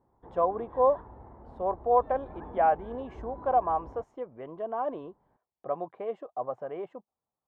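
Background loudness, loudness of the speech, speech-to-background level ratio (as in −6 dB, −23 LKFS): −47.5 LKFS, −30.0 LKFS, 17.5 dB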